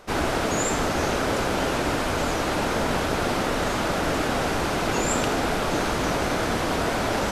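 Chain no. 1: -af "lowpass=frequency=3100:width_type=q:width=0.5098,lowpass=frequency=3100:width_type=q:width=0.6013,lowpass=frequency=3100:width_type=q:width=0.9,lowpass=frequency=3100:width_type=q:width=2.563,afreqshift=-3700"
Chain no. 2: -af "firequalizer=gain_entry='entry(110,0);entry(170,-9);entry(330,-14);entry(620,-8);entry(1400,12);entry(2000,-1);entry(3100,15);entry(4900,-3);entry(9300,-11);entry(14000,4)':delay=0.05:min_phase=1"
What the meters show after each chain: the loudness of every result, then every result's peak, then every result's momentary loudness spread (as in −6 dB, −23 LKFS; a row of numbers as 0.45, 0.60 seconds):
−21.5, −20.0 LKFS; −11.0, −3.0 dBFS; 1, 1 LU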